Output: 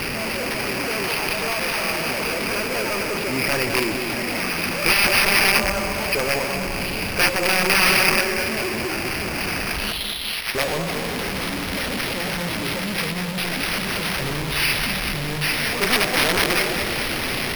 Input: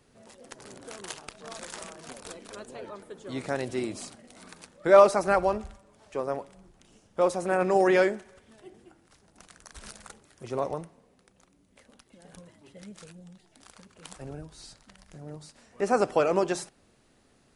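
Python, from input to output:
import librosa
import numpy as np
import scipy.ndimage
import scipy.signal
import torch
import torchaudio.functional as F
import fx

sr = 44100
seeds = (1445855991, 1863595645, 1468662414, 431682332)

p1 = x + 0.5 * 10.0 ** (-22.5 / 20.0) * np.sign(x)
p2 = fx.steep_highpass(p1, sr, hz=1900.0, slope=48, at=(9.92, 10.55))
p3 = p2 + fx.echo_feedback(p2, sr, ms=207, feedback_pct=56, wet_db=-7.0, dry=0)
p4 = (np.mod(10.0 ** (16.5 / 20.0) * p3 + 1.0, 2.0) - 1.0) / 10.0 ** (16.5 / 20.0)
p5 = fx.filter_sweep_lowpass(p4, sr, from_hz=2500.0, to_hz=5200.0, start_s=9.74, end_s=10.45, q=4.9)
y = np.repeat(p5[::6], 6)[:len(p5)]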